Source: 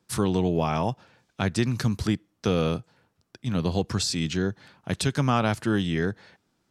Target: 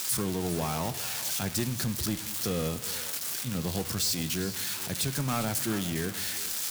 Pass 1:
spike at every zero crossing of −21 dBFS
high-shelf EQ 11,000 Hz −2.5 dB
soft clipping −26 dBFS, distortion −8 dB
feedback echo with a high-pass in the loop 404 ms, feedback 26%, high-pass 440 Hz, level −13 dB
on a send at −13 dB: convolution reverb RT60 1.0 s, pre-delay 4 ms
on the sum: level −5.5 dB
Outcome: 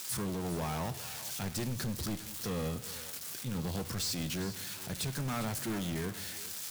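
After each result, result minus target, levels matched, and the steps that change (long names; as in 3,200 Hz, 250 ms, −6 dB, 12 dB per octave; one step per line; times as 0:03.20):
soft clipping: distortion +9 dB; spike at every zero crossing: distortion −7 dB
change: soft clipping −16 dBFS, distortion −17 dB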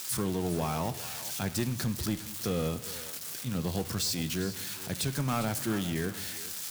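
spike at every zero crossing: distortion −7 dB
change: spike at every zero crossing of −13.5 dBFS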